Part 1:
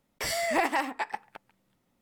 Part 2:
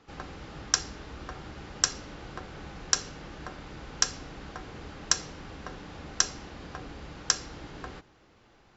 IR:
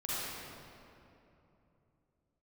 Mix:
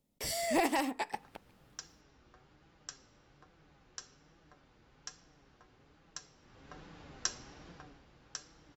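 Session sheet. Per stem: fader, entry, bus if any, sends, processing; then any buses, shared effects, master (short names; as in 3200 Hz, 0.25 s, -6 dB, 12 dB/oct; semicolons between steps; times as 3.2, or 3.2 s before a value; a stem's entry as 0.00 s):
-3.5 dB, 0.00 s, no send, bell 1400 Hz -12.5 dB 1.9 oct; AGC gain up to 7 dB
6.35 s -17.5 dB -> 6.77 s -6 dB -> 7.69 s -6 dB -> 8.06 s -14.5 dB, 1.05 s, send -23 dB, flange 1.2 Hz, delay 5.8 ms, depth 2.8 ms, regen +50%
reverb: on, RT60 3.0 s, pre-delay 38 ms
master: dry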